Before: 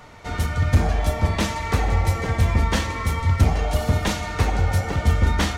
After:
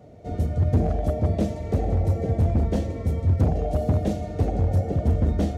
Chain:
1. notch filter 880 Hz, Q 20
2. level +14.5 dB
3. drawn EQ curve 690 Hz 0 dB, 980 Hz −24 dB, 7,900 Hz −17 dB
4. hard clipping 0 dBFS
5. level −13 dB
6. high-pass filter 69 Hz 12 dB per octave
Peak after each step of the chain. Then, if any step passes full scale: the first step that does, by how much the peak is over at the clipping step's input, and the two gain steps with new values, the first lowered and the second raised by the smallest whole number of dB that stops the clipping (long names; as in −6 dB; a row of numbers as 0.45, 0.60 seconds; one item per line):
−7.5, +7.0, +7.0, 0.0, −13.0, −8.0 dBFS
step 2, 7.0 dB
step 2 +7.5 dB, step 5 −6 dB